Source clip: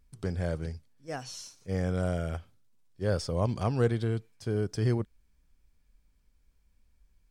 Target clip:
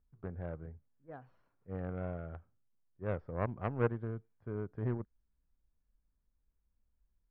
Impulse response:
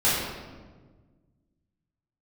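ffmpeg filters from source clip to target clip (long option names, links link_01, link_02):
-af "lowpass=frequency=1600:width=0.5412,lowpass=frequency=1600:width=1.3066,aeval=exprs='0.188*(cos(1*acos(clip(val(0)/0.188,-1,1)))-cos(1*PI/2))+0.0422*(cos(3*acos(clip(val(0)/0.188,-1,1)))-cos(3*PI/2))+0.00299*(cos(6*acos(clip(val(0)/0.188,-1,1)))-cos(6*PI/2))':channel_layout=same,volume=-2dB"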